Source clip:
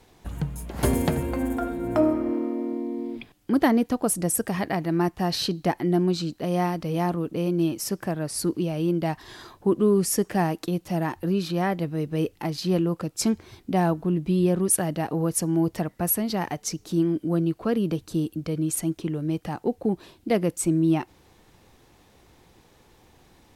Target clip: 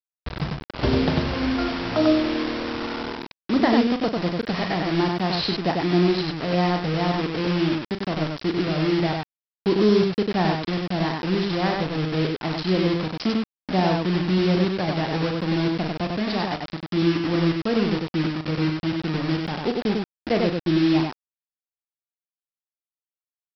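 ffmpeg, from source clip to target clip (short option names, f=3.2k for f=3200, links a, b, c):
-af "aresample=11025,acrusher=bits=4:mix=0:aa=0.000001,aresample=44100,aecho=1:1:37.9|96.21:0.355|0.708"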